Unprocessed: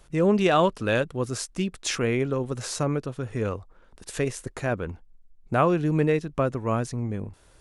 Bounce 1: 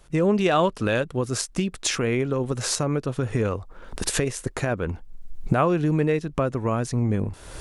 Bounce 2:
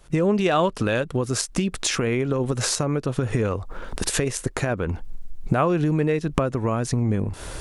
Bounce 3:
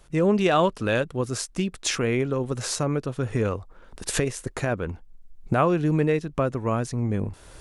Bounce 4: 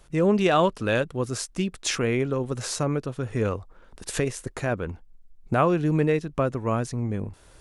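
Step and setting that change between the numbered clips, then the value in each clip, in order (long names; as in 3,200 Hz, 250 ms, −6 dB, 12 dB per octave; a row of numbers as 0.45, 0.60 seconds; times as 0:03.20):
camcorder AGC, rising by: 33, 82, 13, 5.2 dB per second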